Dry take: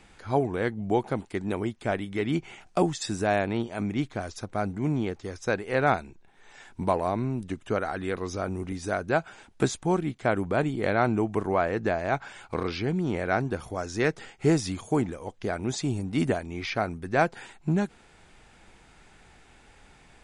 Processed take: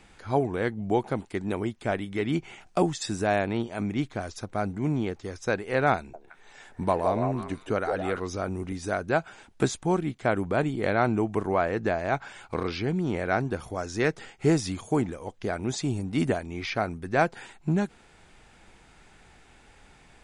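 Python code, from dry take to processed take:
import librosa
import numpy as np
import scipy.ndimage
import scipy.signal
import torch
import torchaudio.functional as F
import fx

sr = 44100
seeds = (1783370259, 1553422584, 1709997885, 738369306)

y = fx.echo_stepped(x, sr, ms=166, hz=570.0, octaves=1.4, feedback_pct=70, wet_db=-1, at=(5.97, 8.2))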